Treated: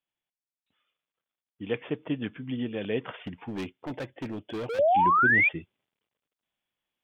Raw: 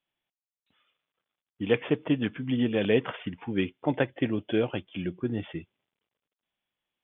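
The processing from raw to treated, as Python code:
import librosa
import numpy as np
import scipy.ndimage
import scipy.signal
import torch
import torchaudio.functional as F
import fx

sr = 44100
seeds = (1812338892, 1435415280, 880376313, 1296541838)

y = fx.rider(x, sr, range_db=4, speed_s=0.5)
y = fx.spec_paint(y, sr, seeds[0], shape='rise', start_s=4.69, length_s=0.8, low_hz=440.0, high_hz=2500.0, level_db=-17.0)
y = fx.clip_hard(y, sr, threshold_db=-26.5, at=(3.27, 4.79))
y = y * 10.0 ** (-4.0 / 20.0)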